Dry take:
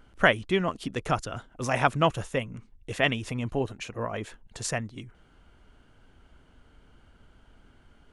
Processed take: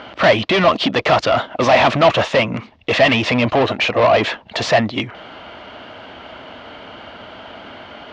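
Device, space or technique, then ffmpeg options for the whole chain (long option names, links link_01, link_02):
overdrive pedal into a guitar cabinet: -filter_complex "[0:a]asplit=2[link_01][link_02];[link_02]highpass=frequency=720:poles=1,volume=37dB,asoftclip=type=tanh:threshold=-5.5dB[link_03];[link_01][link_03]amix=inputs=2:normalize=0,lowpass=frequency=4700:poles=1,volume=-6dB,highpass=75,equalizer=frequency=150:width_type=q:width=4:gain=-5,equalizer=frequency=410:width_type=q:width=4:gain=-4,equalizer=frequency=630:width_type=q:width=4:gain=7,equalizer=frequency=1500:width_type=q:width=4:gain=-6,lowpass=frequency=4500:width=0.5412,lowpass=frequency=4500:width=1.3066"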